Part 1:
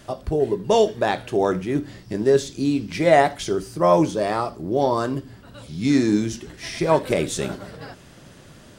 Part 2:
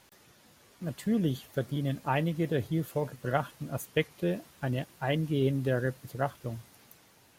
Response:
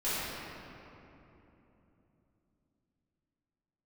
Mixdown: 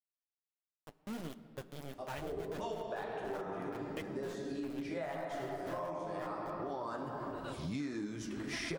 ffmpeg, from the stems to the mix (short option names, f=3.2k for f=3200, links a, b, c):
-filter_complex "[0:a]equalizer=f=1.2k:w=0.5:g=4,adelay=1900,volume=-1.5dB,asplit=2[a][b];[b]volume=-22.5dB[c];[1:a]aeval=exprs='val(0)*gte(abs(val(0)),0.0447)':c=same,volume=-10dB,asplit=3[d][e][f];[e]volume=-22.5dB[g];[f]apad=whole_len=471215[h];[a][h]sidechaincompress=threshold=-58dB:ratio=4:attack=32:release=857[i];[2:a]atrim=start_sample=2205[j];[c][g]amix=inputs=2:normalize=0[k];[k][j]afir=irnorm=-1:irlink=0[l];[i][d][l]amix=inputs=3:normalize=0,flanger=delay=2.7:depth=8.5:regen=-45:speed=1.5:shape=triangular,adynamicequalizer=threshold=0.00501:dfrequency=1300:dqfactor=1.5:tfrequency=1300:tqfactor=1.5:attack=5:release=100:ratio=0.375:range=2.5:mode=boostabove:tftype=bell,acompressor=threshold=-36dB:ratio=16"